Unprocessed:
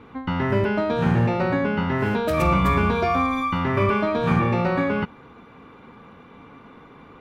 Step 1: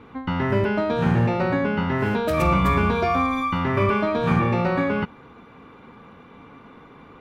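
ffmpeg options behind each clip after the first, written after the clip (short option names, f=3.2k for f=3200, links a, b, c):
-af anull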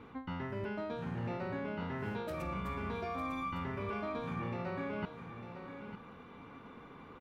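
-af "areverse,acompressor=threshold=-29dB:ratio=12,areverse,aecho=1:1:902:0.335,volume=-6.5dB"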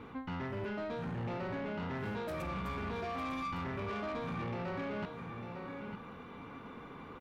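-af "asoftclip=type=tanh:threshold=-38dB,volume=4dB"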